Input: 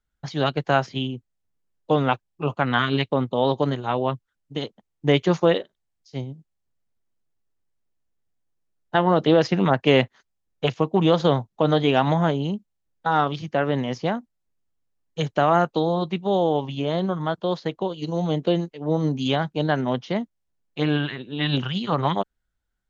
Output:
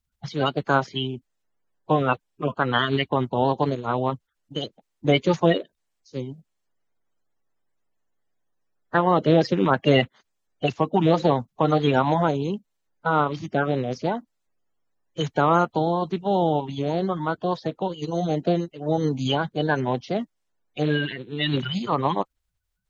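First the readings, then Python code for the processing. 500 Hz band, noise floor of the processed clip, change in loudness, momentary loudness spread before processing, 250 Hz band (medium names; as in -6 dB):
-1.0 dB, -77 dBFS, -0.5 dB, 13 LU, -1.0 dB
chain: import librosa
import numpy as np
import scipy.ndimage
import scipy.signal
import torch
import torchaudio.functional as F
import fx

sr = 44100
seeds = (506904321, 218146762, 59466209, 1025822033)

y = fx.spec_quant(x, sr, step_db=30)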